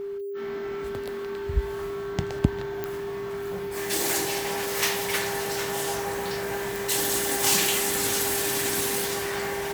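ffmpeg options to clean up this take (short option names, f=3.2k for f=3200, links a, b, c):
-af "adeclick=t=4,bandreject=f=400:w=30"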